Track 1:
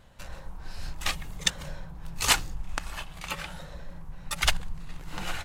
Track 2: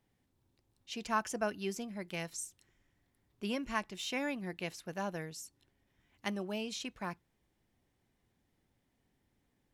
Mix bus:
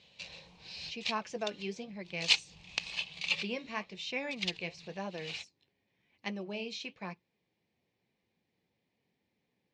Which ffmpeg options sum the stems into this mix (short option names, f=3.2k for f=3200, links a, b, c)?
-filter_complex "[0:a]highshelf=f=2.1k:t=q:w=1.5:g=10.5,volume=-9.5dB[a];[1:a]flanger=delay=3.3:depth=9.4:regen=-61:speed=0.97:shape=sinusoidal,volume=1.5dB,asplit=2[b][c];[c]apad=whole_len=240209[d];[a][d]sidechaincompress=threshold=-53dB:ratio=10:attack=16:release=122[e];[e][b]amix=inputs=2:normalize=0,highpass=130,equalizer=f=180:t=q:w=4:g=3,equalizer=f=280:t=q:w=4:g=-4,equalizer=f=470:t=q:w=4:g=5,equalizer=f=1.4k:t=q:w=4:g=-8,equalizer=f=2.4k:t=q:w=4:g=8,equalizer=f=4.2k:t=q:w=4:g=5,lowpass=f=5.8k:w=0.5412,lowpass=f=5.8k:w=1.3066"